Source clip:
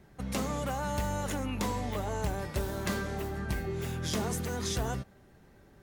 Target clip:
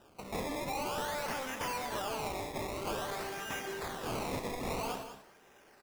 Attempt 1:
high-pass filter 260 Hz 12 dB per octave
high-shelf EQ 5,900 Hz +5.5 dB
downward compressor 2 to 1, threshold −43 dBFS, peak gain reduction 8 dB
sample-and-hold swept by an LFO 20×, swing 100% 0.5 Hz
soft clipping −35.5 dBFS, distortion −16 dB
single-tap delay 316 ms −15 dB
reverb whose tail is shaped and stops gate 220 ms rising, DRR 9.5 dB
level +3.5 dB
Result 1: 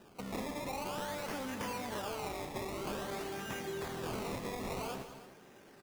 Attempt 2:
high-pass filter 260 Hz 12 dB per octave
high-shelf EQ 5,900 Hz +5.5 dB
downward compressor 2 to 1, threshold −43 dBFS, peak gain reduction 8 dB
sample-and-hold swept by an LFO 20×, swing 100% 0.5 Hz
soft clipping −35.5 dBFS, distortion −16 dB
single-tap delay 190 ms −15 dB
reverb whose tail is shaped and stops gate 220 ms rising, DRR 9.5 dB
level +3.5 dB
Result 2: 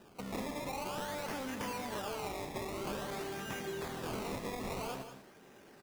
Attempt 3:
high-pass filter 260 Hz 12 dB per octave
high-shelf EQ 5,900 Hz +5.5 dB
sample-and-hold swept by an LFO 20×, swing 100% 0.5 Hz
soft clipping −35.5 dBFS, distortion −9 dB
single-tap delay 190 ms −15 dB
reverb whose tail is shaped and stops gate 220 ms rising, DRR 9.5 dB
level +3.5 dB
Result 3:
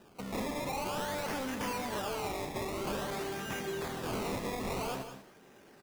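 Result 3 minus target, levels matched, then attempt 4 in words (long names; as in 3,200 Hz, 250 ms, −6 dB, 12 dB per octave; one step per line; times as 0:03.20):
250 Hz band +3.0 dB
high-pass filter 540 Hz 12 dB per octave
high-shelf EQ 5,900 Hz +5.5 dB
sample-and-hold swept by an LFO 20×, swing 100% 0.5 Hz
soft clipping −35.5 dBFS, distortion −10 dB
single-tap delay 190 ms −15 dB
reverb whose tail is shaped and stops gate 220 ms rising, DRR 9.5 dB
level +3.5 dB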